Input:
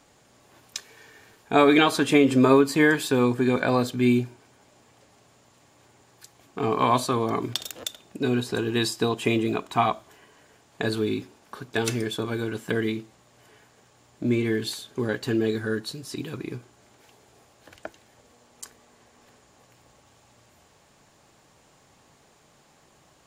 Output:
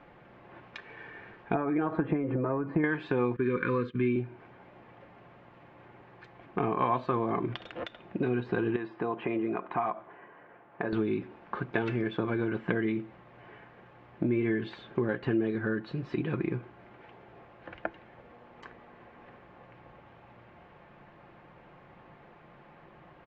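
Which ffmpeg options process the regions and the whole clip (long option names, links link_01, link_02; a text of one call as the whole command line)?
ffmpeg -i in.wav -filter_complex "[0:a]asettb=1/sr,asplit=3[link_01][link_02][link_03];[link_01]atrim=end=1.544[link_04];[link_02]atrim=start=1.54:end=2.84,asetpts=PTS-STARTPTS,afade=type=in:duration=0.004:curve=qsin,afade=type=out:start_time=1.296:duration=0.004:curve=qsin,lowpass=1200,aecho=1:1:6.2:0.46,atrim=end_sample=57330,acompressor=threshold=-21dB:ratio=4:attack=3.2:release=140:knee=1:detection=peak[link_05];[link_03]atrim=start=2.836[link_06];[link_04][link_05]acrossfade=duration=0.004:curve1=hsin:curve2=qsin[link_07];[link_07][link_06]acrossfade=duration=0.004:curve1=qsin:curve2=hsin,asettb=1/sr,asplit=3[link_08][link_09][link_10];[link_08]atrim=end=3.364[link_11];[link_09]atrim=start=3.36:end=4.16,asetpts=PTS-STARTPTS,afade=type=in:duration=0.004:curve=qsin,afade=type=out:start_time=0.796:duration=0.004:curve=qsin,agate=range=-15dB:threshold=-34dB:ratio=16:release=100:detection=peak,asuperstop=centerf=710:order=12:qfactor=1.5[link_12];[link_10]atrim=start=4.156[link_13];[link_11][link_12]acrossfade=duration=0.004:curve1=hsin:curve2=qsin[link_14];[link_14][link_13]acrossfade=duration=0.004:curve1=qsin:curve2=hsin,asettb=1/sr,asplit=3[link_15][link_16][link_17];[link_15]atrim=end=8.764[link_18];[link_16]atrim=start=8.76:end=10.93,asetpts=PTS-STARTPTS,afade=type=in:duration=0.004:curve=qsin,afade=type=out:start_time=2.166:duration=0.004:curve=qsin,acompressor=threshold=-33dB:ratio=2:attack=3.2:release=140:knee=1:detection=peak,lowpass=1600,aemphasis=mode=production:type=bsi[link_19];[link_17]atrim=start=10.926[link_20];[link_18][link_19]acrossfade=duration=0.004:curve1=hsin:curve2=qsin[link_21];[link_21][link_20]acrossfade=duration=0.004:curve1=qsin:curve2=hsin,acompressor=threshold=-32dB:ratio=4,lowpass=frequency=2400:width=0.5412,lowpass=frequency=2400:width=1.3066,aecho=1:1:5.7:0.36,volume=5dB" out.wav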